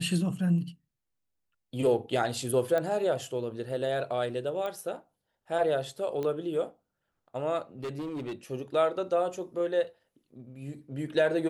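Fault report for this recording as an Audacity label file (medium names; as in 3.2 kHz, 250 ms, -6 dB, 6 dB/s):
2.780000	2.780000	pop -18 dBFS
4.660000	4.660000	pop -23 dBFS
6.230000	6.230000	pop -22 dBFS
7.830000	8.330000	clipped -32 dBFS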